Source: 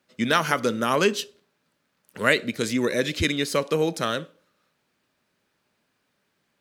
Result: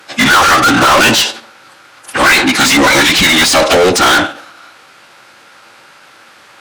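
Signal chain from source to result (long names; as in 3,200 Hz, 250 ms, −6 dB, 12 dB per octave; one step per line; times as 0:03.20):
hollow resonant body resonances 1,000/1,400 Hz, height 8 dB, ringing for 30 ms
phase-vocoder pitch shift with formants kept −10 semitones
mid-hump overdrive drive 36 dB, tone 6,900 Hz, clips at −6.5 dBFS
level +5 dB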